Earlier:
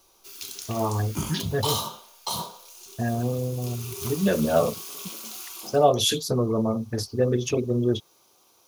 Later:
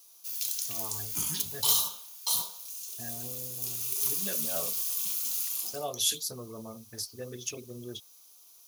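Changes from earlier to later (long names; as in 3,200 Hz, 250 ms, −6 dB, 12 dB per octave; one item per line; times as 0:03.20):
background +5.0 dB
master: add first-order pre-emphasis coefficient 0.9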